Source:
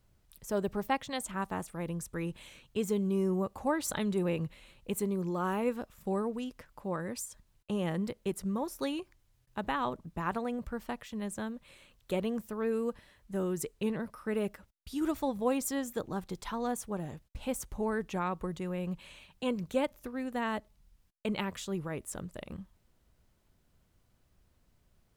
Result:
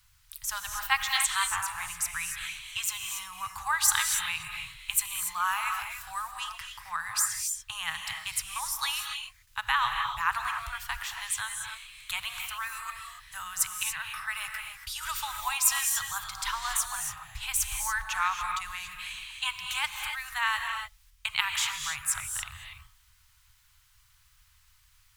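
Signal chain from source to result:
inverse Chebyshev band-stop filter 200–530 Hz, stop band 50 dB
tilt shelving filter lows −6 dB
reverb whose tail is shaped and stops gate 310 ms rising, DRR 3.5 dB
level +8 dB

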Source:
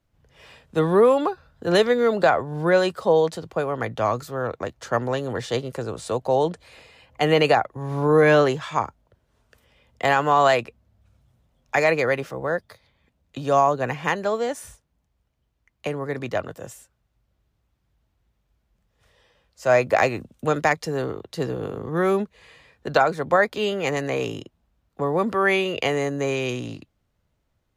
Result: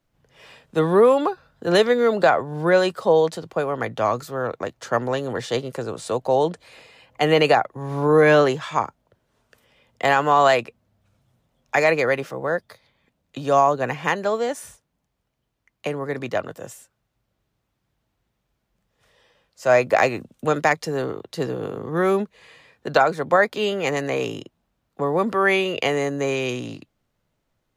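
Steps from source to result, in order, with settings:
parametric band 62 Hz −15 dB 0.94 octaves
level +1.5 dB

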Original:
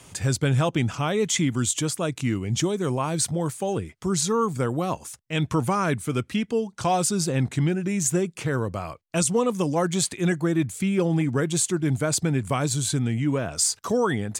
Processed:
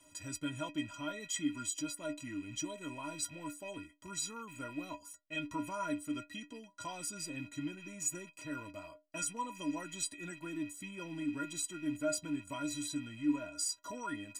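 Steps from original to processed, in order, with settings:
loose part that buzzes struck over −35 dBFS, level −30 dBFS
dynamic equaliser 520 Hz, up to −3 dB, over −34 dBFS, Q 1.1
stiff-string resonator 290 Hz, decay 0.24 s, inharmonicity 0.03

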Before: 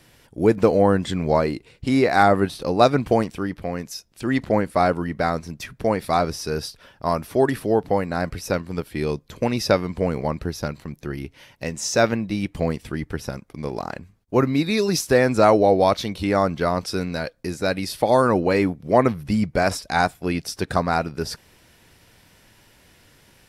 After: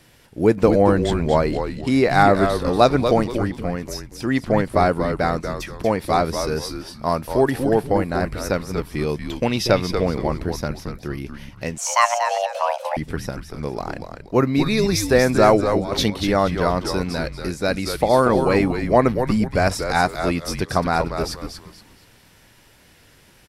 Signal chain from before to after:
0:09.29–0:09.69: parametric band 3,200 Hz +11 dB 0.45 octaves
0:15.60–0:16.10: compressor whose output falls as the input rises −23 dBFS, ratio −0.5
on a send: echo with shifted repeats 236 ms, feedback 31%, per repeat −120 Hz, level −7 dB
0:11.78–0:12.97: on the sum: frequency shifter +480 Hz
level +1 dB

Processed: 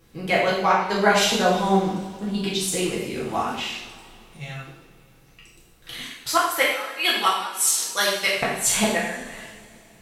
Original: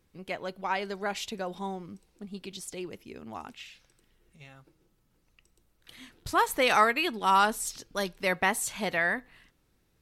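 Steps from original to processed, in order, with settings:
0:06.01–0:08.36: high-pass filter 1,400 Hz 6 dB per octave
gate with flip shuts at −19 dBFS, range −24 dB
coupled-rooms reverb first 0.73 s, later 2.9 s, from −18 dB, DRR −6.5 dB
level +9 dB

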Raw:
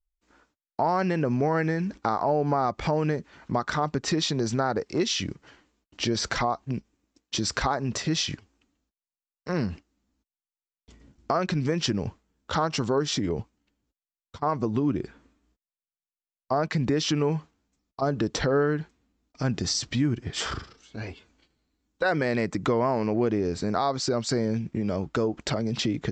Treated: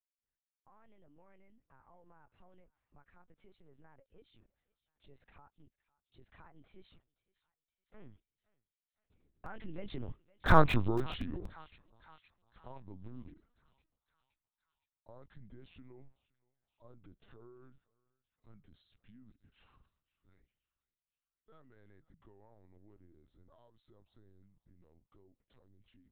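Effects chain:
source passing by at 0:10.58, 56 m/s, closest 3.8 metres
on a send: feedback echo with a high-pass in the loop 515 ms, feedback 60%, high-pass 770 Hz, level −21 dB
on the sum: dynamic equaliser 720 Hz, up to −3 dB, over −59 dBFS, Q 2.8
linear-prediction vocoder at 8 kHz pitch kept
low-shelf EQ 130 Hz +8 dB
in parallel at −3.5 dB: comparator with hysteresis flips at −37.5 dBFS
on the sum: level +4 dB

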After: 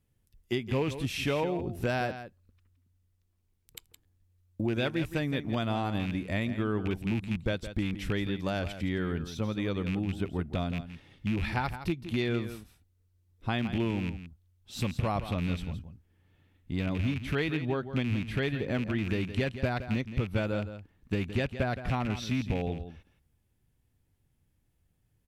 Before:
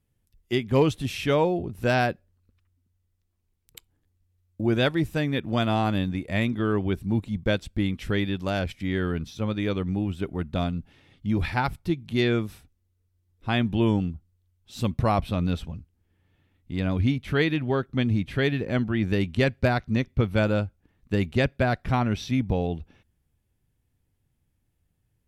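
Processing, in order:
loose part that buzzes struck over −26 dBFS, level −23 dBFS
downward compressor 3 to 1, threshold −28 dBFS, peak gain reduction 10.5 dB
single-tap delay 167 ms −11.5 dB

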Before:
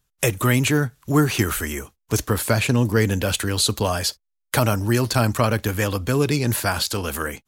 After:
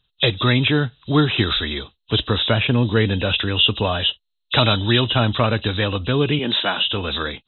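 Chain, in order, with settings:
hearing-aid frequency compression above 2,500 Hz 4 to 1
0:04.58–0:05.04: high-shelf EQ 2,200 Hz +9 dB
0:06.39–0:06.88: high-pass filter 180 Hz 24 dB per octave
level +1 dB

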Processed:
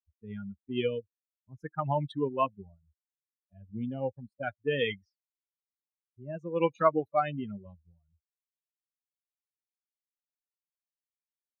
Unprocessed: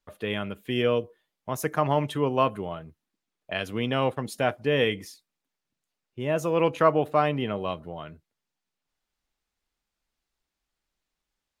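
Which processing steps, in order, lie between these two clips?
spectral dynamics exaggerated over time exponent 3
0:02.46–0:04.43: flat-topped bell 2,600 Hz −15.5 dB 3 octaves
low-pass that shuts in the quiet parts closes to 320 Hz, open at −25 dBFS

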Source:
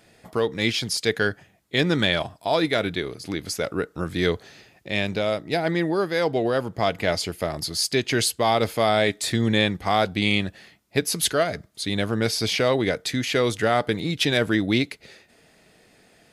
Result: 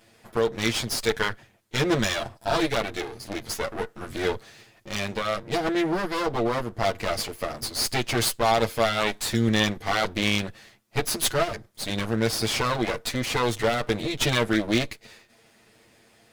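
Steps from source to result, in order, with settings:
lower of the sound and its delayed copy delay 8.8 ms

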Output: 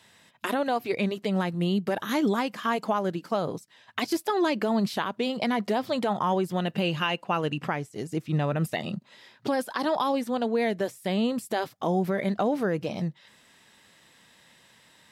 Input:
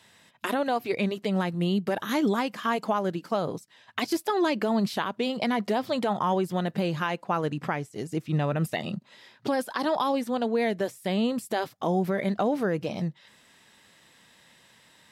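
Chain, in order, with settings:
0:06.60–0:07.64: parametric band 2,800 Hz +12.5 dB 0.22 octaves

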